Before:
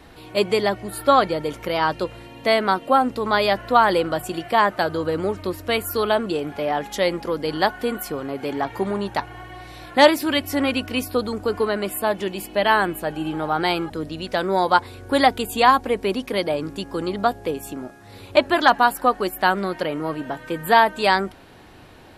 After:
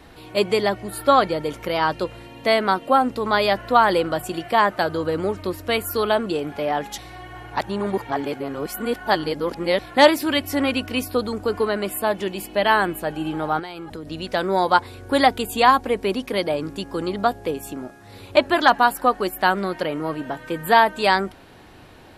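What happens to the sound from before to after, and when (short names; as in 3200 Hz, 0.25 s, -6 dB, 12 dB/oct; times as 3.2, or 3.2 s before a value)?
6.98–9.79 reverse
13.59–14.09 compressor 12:1, threshold -29 dBFS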